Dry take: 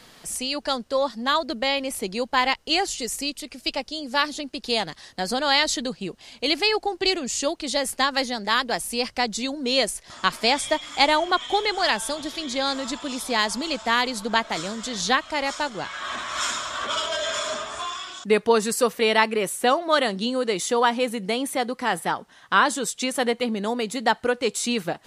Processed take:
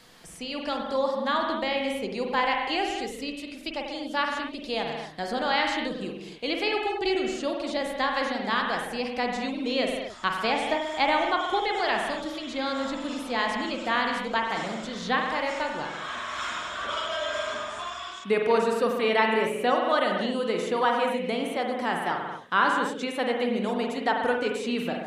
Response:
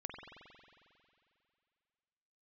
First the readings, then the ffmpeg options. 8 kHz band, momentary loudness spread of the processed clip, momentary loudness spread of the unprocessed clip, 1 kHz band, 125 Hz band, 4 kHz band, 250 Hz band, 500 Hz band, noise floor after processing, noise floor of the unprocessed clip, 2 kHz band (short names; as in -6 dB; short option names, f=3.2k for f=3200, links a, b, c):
-15.0 dB, 9 LU, 9 LU, -2.0 dB, -2.5 dB, -7.5 dB, -2.0 dB, -2.0 dB, -40 dBFS, -52 dBFS, -3.0 dB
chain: -filter_complex "[0:a]acrossover=split=3600[a][b];[b]acompressor=threshold=-41dB:ratio=4:attack=1:release=60[c];[a][c]amix=inputs=2:normalize=0[d];[1:a]atrim=start_sample=2205,afade=t=out:st=0.32:d=0.01,atrim=end_sample=14553[e];[d][e]afir=irnorm=-1:irlink=0"